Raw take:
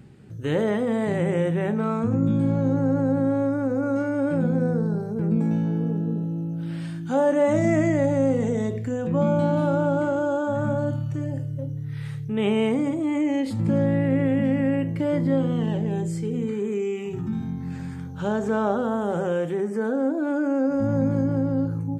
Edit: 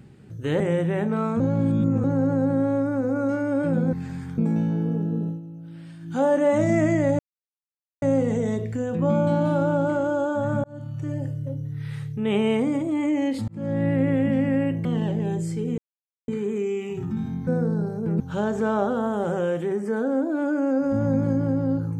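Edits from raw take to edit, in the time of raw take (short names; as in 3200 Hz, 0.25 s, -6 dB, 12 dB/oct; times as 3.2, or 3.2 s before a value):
0.6–1.27 cut
2.07–2.71 reverse
4.6–5.33 swap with 17.63–18.08
6.23–7.08 dip -10 dB, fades 0.13 s
8.14 insert silence 0.83 s
10.76–11.25 fade in
13.6–14 fade in
14.97–15.51 cut
16.44 insert silence 0.50 s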